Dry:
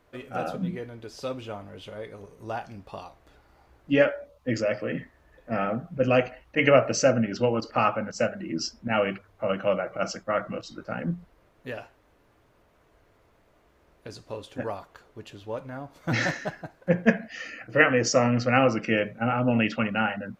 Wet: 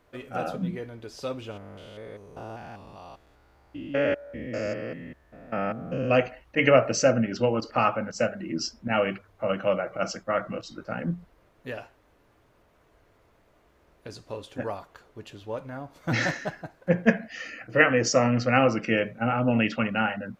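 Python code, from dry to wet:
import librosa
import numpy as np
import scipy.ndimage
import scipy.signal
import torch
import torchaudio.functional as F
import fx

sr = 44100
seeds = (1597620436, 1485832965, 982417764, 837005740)

y = fx.spec_steps(x, sr, hold_ms=200, at=(1.5, 6.09), fade=0.02)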